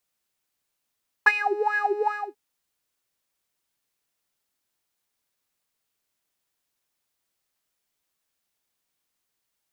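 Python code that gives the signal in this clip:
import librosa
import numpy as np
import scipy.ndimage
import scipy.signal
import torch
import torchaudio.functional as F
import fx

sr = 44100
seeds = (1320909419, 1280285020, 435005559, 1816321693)

y = fx.sub_patch_wobble(sr, seeds[0], note=80, wave='square', wave2='square', interval_st=12, level2_db=-7.0, sub_db=-2.5, noise_db=-14.5, kind='bandpass', cutoff_hz=490.0, q=10.0, env_oct=1.5, env_decay_s=0.27, env_sustain_pct=40, attack_ms=8.4, decay_s=0.05, sustain_db=-14, release_s=0.27, note_s=0.82, lfo_hz=2.5, wobble_oct=1.2)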